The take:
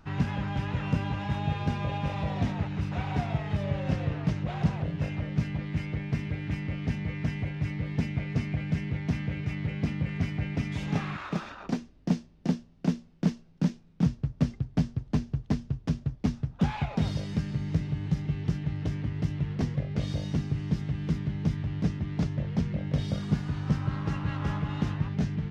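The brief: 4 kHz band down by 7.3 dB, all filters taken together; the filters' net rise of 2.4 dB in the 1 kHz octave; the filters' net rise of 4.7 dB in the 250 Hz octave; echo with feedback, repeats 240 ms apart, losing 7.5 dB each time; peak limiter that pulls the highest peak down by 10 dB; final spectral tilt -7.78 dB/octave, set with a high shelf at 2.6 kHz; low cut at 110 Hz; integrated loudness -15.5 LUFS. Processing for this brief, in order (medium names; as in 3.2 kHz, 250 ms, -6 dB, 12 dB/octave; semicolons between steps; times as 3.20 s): high-pass 110 Hz; peaking EQ 250 Hz +7.5 dB; peaking EQ 1 kHz +3.5 dB; treble shelf 2.6 kHz -4.5 dB; peaking EQ 4 kHz -6.5 dB; peak limiter -18 dBFS; feedback delay 240 ms, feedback 42%, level -7.5 dB; trim +14.5 dB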